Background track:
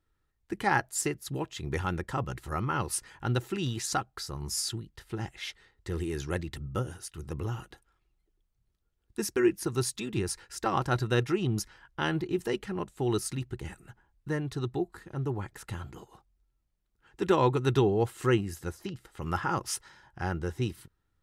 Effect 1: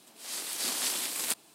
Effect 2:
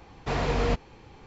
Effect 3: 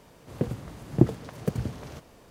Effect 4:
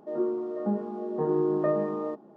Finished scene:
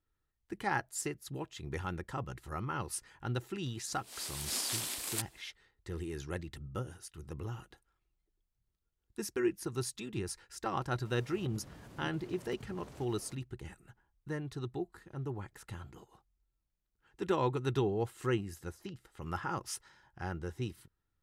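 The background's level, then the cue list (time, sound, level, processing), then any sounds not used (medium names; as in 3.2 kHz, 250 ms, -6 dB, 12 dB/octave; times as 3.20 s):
background track -7 dB
3.88 s: add 1 -5.5 dB
11.05 s: add 3 -4 dB + compression 2.5:1, threshold -47 dBFS
not used: 2, 4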